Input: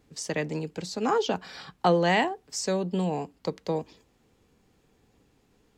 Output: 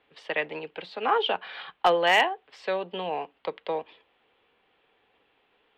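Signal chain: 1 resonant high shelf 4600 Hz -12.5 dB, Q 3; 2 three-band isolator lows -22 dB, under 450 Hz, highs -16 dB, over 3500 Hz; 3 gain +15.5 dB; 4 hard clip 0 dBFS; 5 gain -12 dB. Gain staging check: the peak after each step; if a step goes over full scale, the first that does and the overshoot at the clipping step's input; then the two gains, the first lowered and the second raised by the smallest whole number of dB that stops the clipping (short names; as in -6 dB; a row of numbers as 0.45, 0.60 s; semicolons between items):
-8.5, -11.0, +4.5, 0.0, -12.0 dBFS; step 3, 4.5 dB; step 3 +10.5 dB, step 5 -7 dB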